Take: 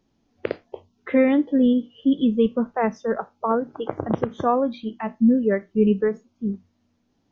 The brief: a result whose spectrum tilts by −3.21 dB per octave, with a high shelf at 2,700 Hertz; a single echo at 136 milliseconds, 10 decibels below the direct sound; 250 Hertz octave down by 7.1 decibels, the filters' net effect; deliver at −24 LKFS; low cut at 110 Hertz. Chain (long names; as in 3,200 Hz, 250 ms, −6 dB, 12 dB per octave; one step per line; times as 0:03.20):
high-pass filter 110 Hz
parametric band 250 Hz −7.5 dB
high-shelf EQ 2,700 Hz −6.5 dB
single-tap delay 136 ms −10 dB
level +2.5 dB